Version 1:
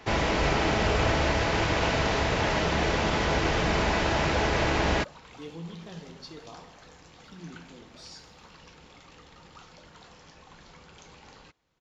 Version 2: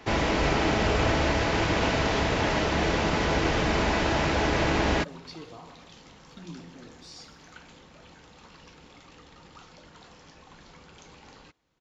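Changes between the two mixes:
speech: entry −0.95 s
master: add parametric band 280 Hz +3.5 dB 0.7 octaves

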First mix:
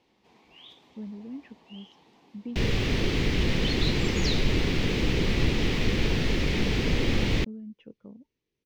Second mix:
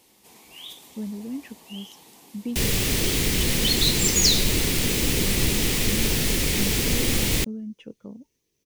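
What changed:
speech +6.0 dB
first sound +4.5 dB
master: remove high-frequency loss of the air 230 metres

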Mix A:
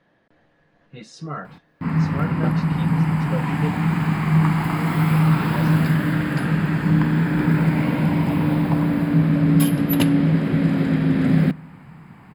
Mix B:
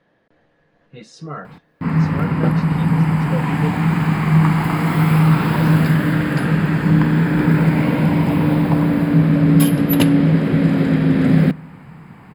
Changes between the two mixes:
background +3.5 dB
master: add parametric band 470 Hz +4 dB 0.43 octaves

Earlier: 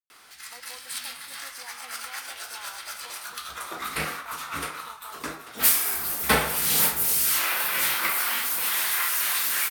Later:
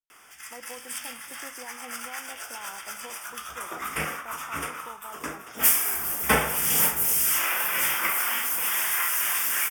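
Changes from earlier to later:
speech: remove resonant band-pass 1,500 Hz, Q 0.92
master: add Butterworth band-reject 4,100 Hz, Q 2.4

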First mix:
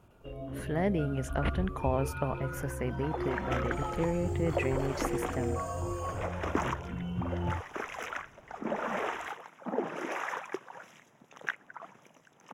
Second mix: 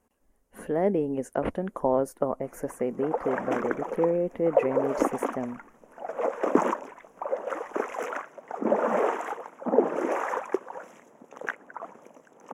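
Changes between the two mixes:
speech −3.5 dB
first sound: muted
master: add octave-band graphic EQ 125/250/500/1,000/4,000/8,000 Hz −7/+8/+11/+5/−9/+6 dB

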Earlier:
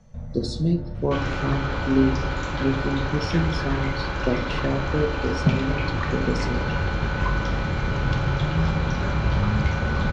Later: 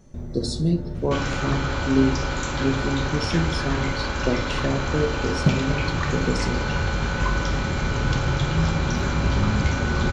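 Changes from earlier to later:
speech: add high-frequency loss of the air 68 metres
first sound: remove Chebyshev band-stop filter 230–460 Hz, order 4
master: remove high-frequency loss of the air 150 metres

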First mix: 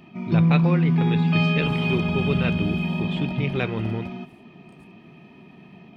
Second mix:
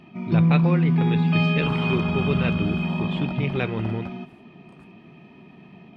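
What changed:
second sound: add parametric band 1,300 Hz +11 dB 1.2 octaves
master: add high-shelf EQ 7,400 Hz −8.5 dB

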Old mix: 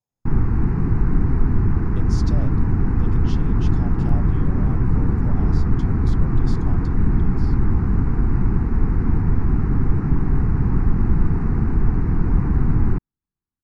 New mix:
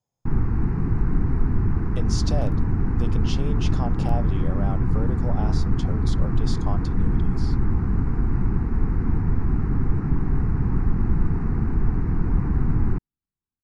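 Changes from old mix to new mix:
speech +7.5 dB
background −3.5 dB

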